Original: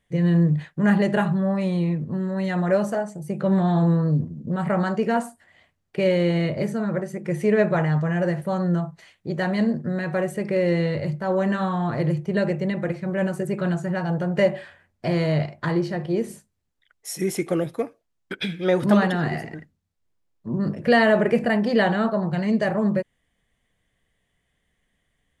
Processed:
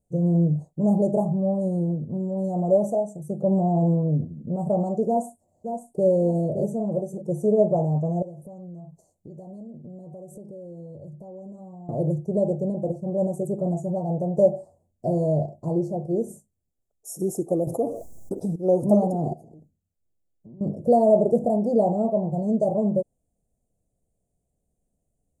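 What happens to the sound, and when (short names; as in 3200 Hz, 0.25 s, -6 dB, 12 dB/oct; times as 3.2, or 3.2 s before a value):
5.07–6.07 echo throw 0.57 s, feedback 30%, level -7.5 dB
8.22–11.89 compressor, threshold -36 dBFS
17.67–18.56 fast leveller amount 70%
19.33–20.61 compressor, threshold -41 dBFS
whole clip: elliptic band-stop 690–7000 Hz, stop band 50 dB; dynamic EQ 760 Hz, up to +5 dB, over -36 dBFS, Q 0.82; gain -2 dB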